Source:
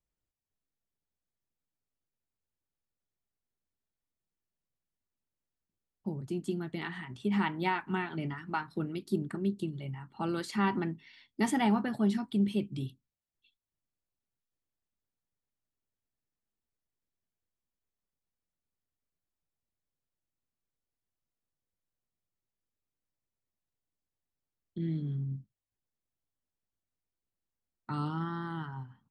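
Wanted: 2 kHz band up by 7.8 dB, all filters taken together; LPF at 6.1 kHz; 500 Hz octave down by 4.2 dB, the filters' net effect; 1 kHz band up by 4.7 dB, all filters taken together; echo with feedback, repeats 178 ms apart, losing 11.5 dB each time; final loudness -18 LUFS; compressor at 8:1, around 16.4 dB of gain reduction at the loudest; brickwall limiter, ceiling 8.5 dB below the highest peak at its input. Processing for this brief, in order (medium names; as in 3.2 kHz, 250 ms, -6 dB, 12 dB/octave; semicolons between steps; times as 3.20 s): low-pass 6.1 kHz; peaking EQ 500 Hz -8.5 dB; peaking EQ 1 kHz +6 dB; peaking EQ 2 kHz +8 dB; compression 8:1, threshold -39 dBFS; peak limiter -33.5 dBFS; feedback delay 178 ms, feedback 27%, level -11.5 dB; trim +26.5 dB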